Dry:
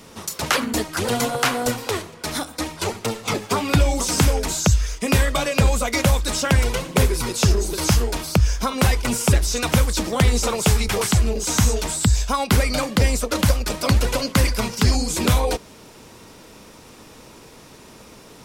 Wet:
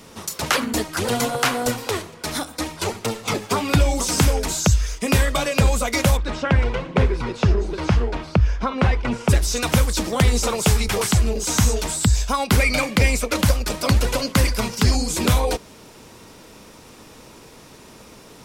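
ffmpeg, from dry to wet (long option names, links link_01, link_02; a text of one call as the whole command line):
ffmpeg -i in.wav -filter_complex "[0:a]asplit=3[link_01][link_02][link_03];[link_01]afade=type=out:start_time=6.16:duration=0.02[link_04];[link_02]lowpass=2500,afade=type=in:start_time=6.16:duration=0.02,afade=type=out:start_time=9.28:duration=0.02[link_05];[link_03]afade=type=in:start_time=9.28:duration=0.02[link_06];[link_04][link_05][link_06]amix=inputs=3:normalize=0,asettb=1/sr,asplit=3[link_07][link_08][link_09];[link_07]atrim=end=12.594[link_10];[link_08]atrim=start=12.59:end=13.36,asetpts=PTS-STARTPTS,afade=type=in:duration=0.004:curve=qsin,afade=type=out:start_time=0.766:duration=0.004:curve=qsin,equalizer=frequency=2300:width_type=o:width=0.3:gain=11[link_11];[link_09]atrim=start=13.356[link_12];[link_10][link_11]acrossfade=duration=0.004:curve1=hsin:curve2=qsin[link_13];[link_13][link_12]acrossfade=duration=0.004:curve1=qsin:curve2=hsin" out.wav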